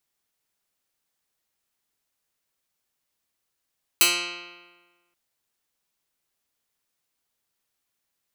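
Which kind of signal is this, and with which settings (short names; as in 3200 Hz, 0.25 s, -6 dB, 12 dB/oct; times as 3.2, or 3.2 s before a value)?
plucked string F3, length 1.13 s, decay 1.40 s, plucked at 0.1, medium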